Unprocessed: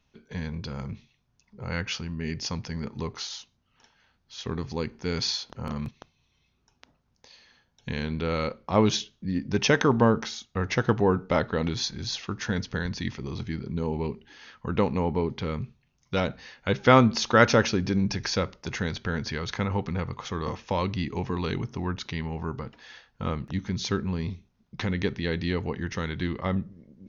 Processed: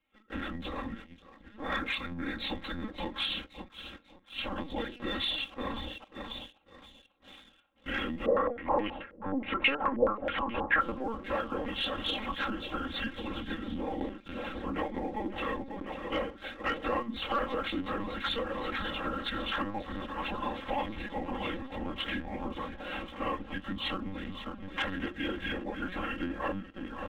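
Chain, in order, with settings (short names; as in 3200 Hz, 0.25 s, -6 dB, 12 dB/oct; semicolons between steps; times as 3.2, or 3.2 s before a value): inharmonic rescaling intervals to 92%; notches 60/120/180/240/300/360/420/480 Hz; harmonic tremolo 3.2 Hz, depth 50%, crossover 570 Hz; feedback echo 0.543 s, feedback 57%, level -13.5 dB; compressor 8:1, threshold -38 dBFS, peak gain reduction 21 dB; gate -50 dBFS, range -6 dB; low shelf 250 Hz -5.5 dB; LPC vocoder at 8 kHz pitch kept; low shelf 120 Hz -10.5 dB; comb 3.7 ms, depth 96%; sample leveller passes 1; 8.26–10.81 stepped low-pass 9.4 Hz 530–2700 Hz; gain +5.5 dB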